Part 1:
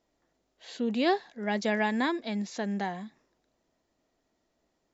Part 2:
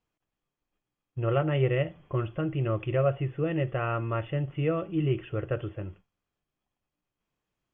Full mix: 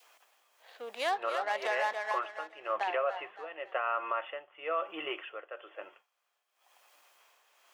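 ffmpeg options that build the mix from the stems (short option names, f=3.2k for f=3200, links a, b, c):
-filter_complex "[0:a]adynamicsmooth=sensitivity=4.5:basefreq=1.2k,volume=1.5dB,asplit=3[a][b][c];[a]atrim=end=1.93,asetpts=PTS-STARTPTS,afade=t=out:st=1.926:d=0.004:c=hsin[d];[b]atrim=start=1.93:end=2.75,asetpts=PTS-STARTPTS,volume=0[e];[c]atrim=start=2.75,asetpts=PTS-STARTPTS,afade=t=in:d=0.004:c=hsin[f];[d][e][f]concat=n=3:v=0:a=1,asplit=2[g][h];[h]volume=-9dB[i];[1:a]acontrast=79,tremolo=f=1:d=0.81,acompressor=mode=upward:threshold=-41dB:ratio=2.5,volume=0dB[j];[i]aecho=0:1:282|564|846|1128|1410:1|0.33|0.109|0.0359|0.0119[k];[g][j][k]amix=inputs=3:normalize=0,highpass=f=610:w=0.5412,highpass=f=610:w=1.3066,adynamicequalizer=threshold=0.00708:dfrequency=1100:dqfactor=1.3:tfrequency=1100:tqfactor=1.3:attack=5:release=100:ratio=0.375:range=3:mode=boostabove:tftype=bell,alimiter=limit=-21.5dB:level=0:latency=1:release=110"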